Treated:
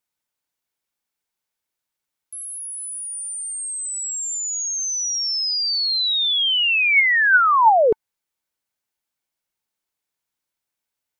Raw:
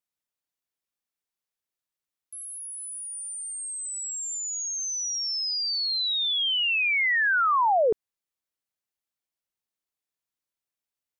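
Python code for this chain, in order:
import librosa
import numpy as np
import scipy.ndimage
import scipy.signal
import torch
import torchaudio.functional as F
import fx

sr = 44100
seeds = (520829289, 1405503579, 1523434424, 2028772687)

y = fx.small_body(x, sr, hz=(890.0, 1500.0, 2200.0), ring_ms=45, db=6)
y = F.gain(torch.from_numpy(y), 6.0).numpy()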